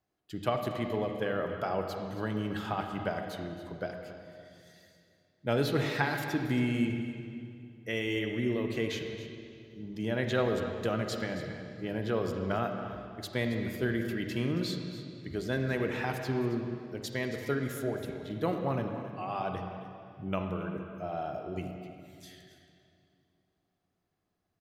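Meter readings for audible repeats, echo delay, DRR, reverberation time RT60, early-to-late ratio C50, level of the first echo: 1, 274 ms, 4.0 dB, 2.5 s, 4.5 dB, −13.5 dB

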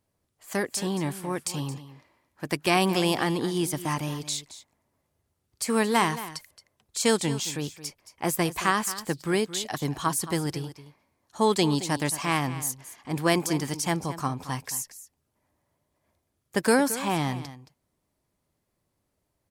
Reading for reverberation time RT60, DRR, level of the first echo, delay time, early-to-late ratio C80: no reverb audible, no reverb audible, −14.5 dB, 222 ms, no reverb audible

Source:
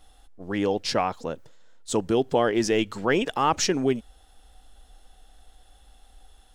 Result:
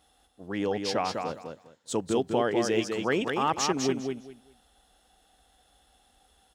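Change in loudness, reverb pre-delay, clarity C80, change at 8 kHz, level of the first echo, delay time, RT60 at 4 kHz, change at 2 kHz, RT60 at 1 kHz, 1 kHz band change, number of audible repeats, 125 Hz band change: −3.5 dB, no reverb audible, no reverb audible, −3.5 dB, −5.0 dB, 201 ms, no reverb audible, −3.0 dB, no reverb audible, −3.5 dB, 3, −4.0 dB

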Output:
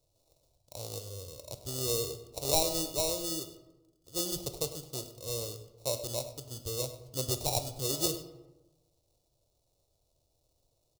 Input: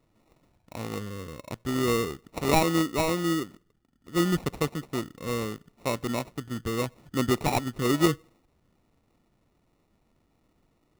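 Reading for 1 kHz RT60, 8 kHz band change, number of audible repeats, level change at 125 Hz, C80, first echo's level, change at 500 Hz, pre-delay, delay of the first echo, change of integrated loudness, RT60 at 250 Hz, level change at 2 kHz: 1.0 s, +4.5 dB, 1, −8.5 dB, 11.5 dB, −15.5 dB, −6.5 dB, 14 ms, 101 ms, −5.0 dB, 1.2 s, −17.5 dB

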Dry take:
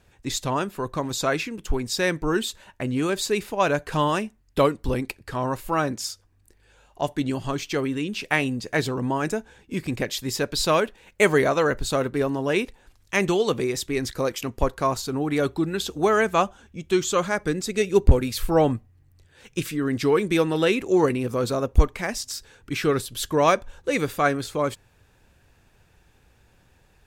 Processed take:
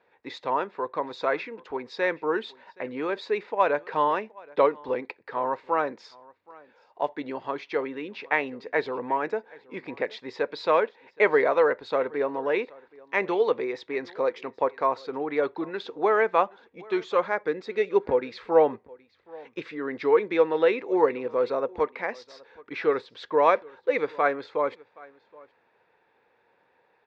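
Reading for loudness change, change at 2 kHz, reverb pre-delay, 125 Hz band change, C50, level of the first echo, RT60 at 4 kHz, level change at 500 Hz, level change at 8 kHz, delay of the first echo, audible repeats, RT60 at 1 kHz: −2.0 dB, −2.5 dB, no reverb audible, −21.0 dB, no reverb audible, −23.5 dB, no reverb audible, −0.5 dB, below −25 dB, 773 ms, 1, no reverb audible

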